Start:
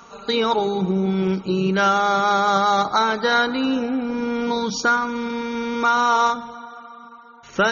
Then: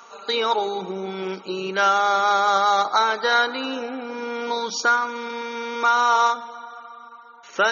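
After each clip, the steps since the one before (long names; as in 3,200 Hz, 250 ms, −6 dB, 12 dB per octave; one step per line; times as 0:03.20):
high-pass filter 460 Hz 12 dB per octave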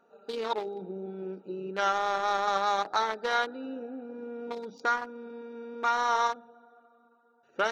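adaptive Wiener filter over 41 samples
level −6.5 dB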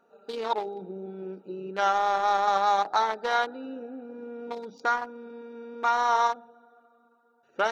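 dynamic equaliser 800 Hz, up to +6 dB, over −43 dBFS, Q 2.1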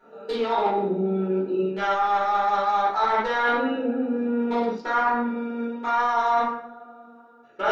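convolution reverb RT60 0.60 s, pre-delay 5 ms, DRR −12 dB
reversed playback
downward compressor 12 to 1, threshold −19 dBFS, peak gain reduction 15.5 dB
reversed playback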